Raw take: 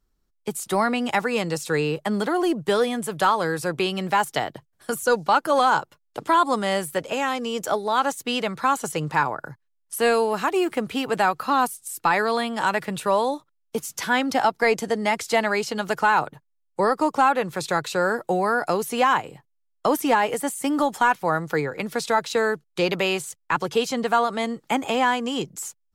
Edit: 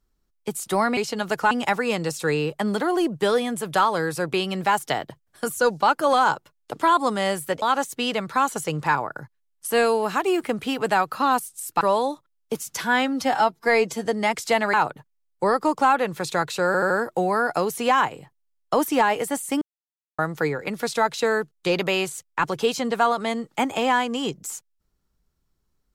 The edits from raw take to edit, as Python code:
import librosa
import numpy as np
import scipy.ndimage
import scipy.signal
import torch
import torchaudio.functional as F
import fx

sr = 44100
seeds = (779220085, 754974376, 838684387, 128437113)

y = fx.edit(x, sr, fx.cut(start_s=7.08, length_s=0.82),
    fx.cut(start_s=12.09, length_s=0.95),
    fx.stretch_span(start_s=14.07, length_s=0.81, factor=1.5),
    fx.move(start_s=15.56, length_s=0.54, to_s=0.97),
    fx.stutter(start_s=18.03, slice_s=0.08, count=4),
    fx.silence(start_s=20.74, length_s=0.57), tone=tone)